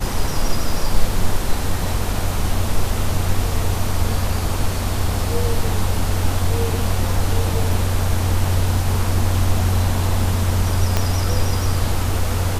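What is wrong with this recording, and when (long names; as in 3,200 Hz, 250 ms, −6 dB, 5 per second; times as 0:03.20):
0:10.97: click −3 dBFS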